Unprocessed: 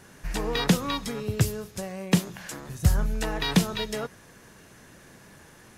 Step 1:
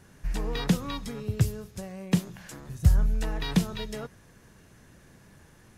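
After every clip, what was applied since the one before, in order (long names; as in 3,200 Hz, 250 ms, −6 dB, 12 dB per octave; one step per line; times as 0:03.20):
low-shelf EQ 170 Hz +10.5 dB
level −7 dB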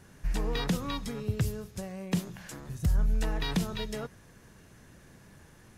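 brickwall limiter −18.5 dBFS, peak gain reduction 9.5 dB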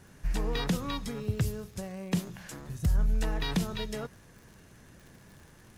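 surface crackle 83 per second −45 dBFS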